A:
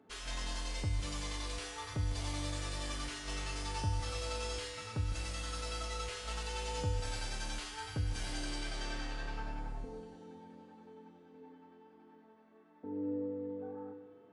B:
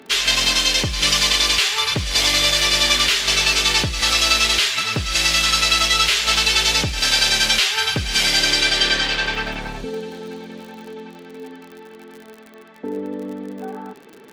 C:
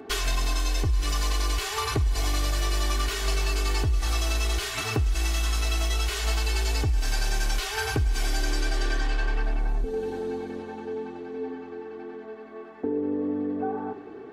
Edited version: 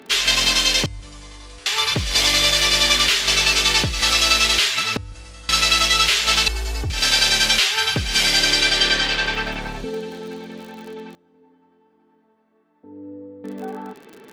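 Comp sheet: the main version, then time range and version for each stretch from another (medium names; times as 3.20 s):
B
0.86–1.66 s: from A
4.97–5.49 s: from A
6.48–6.90 s: from C
11.15–13.44 s: from A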